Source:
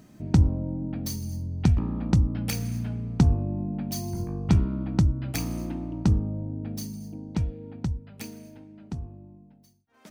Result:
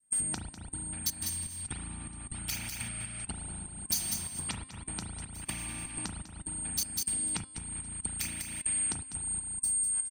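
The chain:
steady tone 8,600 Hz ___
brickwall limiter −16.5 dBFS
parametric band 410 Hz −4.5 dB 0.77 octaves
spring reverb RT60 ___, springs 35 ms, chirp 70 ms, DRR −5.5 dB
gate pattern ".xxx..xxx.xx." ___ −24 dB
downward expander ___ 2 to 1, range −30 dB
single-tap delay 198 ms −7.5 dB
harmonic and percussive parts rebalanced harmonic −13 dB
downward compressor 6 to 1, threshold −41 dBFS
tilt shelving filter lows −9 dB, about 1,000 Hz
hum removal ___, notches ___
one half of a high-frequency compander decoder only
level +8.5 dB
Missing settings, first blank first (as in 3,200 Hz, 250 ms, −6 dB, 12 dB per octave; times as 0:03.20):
−30 dBFS, 2.2 s, 123 BPM, −45 dBFS, 261.5 Hz, 19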